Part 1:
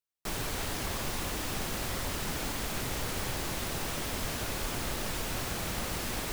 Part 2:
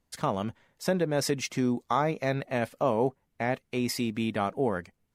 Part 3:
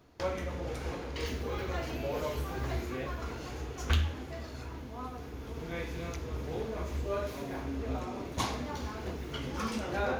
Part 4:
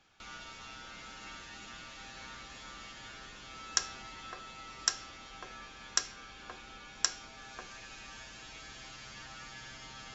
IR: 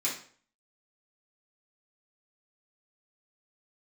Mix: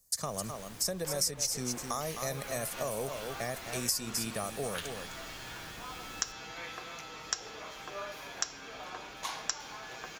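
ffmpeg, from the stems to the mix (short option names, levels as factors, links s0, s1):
-filter_complex "[0:a]volume=0.178[s0];[1:a]aecho=1:1:1.7:0.44,aexciter=amount=15.6:drive=4:freq=4800,volume=0.562,asplit=2[s1][s2];[s2]volume=0.316[s3];[2:a]highpass=800,adelay=850,volume=0.841[s4];[3:a]highpass=54,aecho=1:1:6.4:0.4,adelay=2450,volume=1.19[s5];[s3]aecho=0:1:258:1[s6];[s0][s1][s4][s5][s6]amix=inputs=5:normalize=0,acrossover=split=98|6400[s7][s8][s9];[s7]acompressor=threshold=0.00282:ratio=4[s10];[s8]acompressor=threshold=0.0224:ratio=4[s11];[s9]acompressor=threshold=0.0126:ratio=4[s12];[s10][s11][s12]amix=inputs=3:normalize=0"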